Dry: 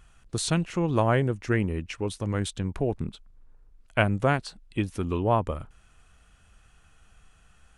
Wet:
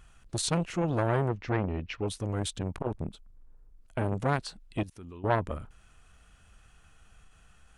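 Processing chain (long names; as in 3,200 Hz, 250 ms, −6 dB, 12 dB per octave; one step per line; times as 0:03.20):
0:01.29–0:02.08: low-pass filter 4,800 Hz 24 dB per octave
0:02.96–0:04.03: parametric band 2,600 Hz −6 dB 2.9 octaves
0:04.83–0:05.24: output level in coarse steps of 22 dB
saturating transformer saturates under 900 Hz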